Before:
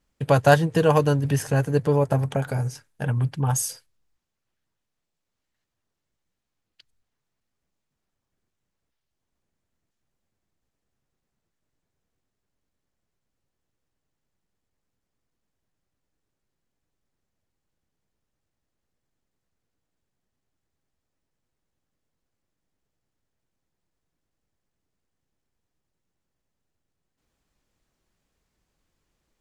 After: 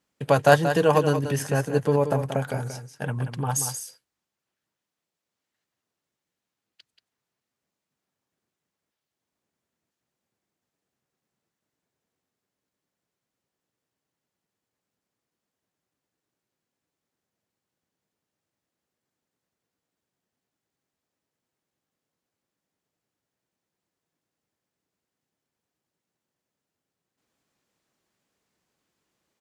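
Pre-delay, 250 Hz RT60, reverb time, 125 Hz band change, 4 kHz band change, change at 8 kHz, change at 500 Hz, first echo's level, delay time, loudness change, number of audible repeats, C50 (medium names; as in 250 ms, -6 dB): no reverb, no reverb, no reverb, -4.5 dB, +0.5 dB, +0.5 dB, 0.0 dB, -9.0 dB, 182 ms, -1.0 dB, 1, no reverb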